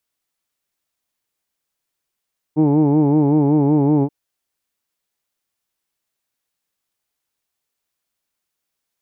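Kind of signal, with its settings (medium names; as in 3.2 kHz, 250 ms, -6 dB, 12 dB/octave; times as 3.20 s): formant vowel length 1.53 s, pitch 149 Hz, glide -0.5 st, F1 340 Hz, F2 860 Hz, F3 2.3 kHz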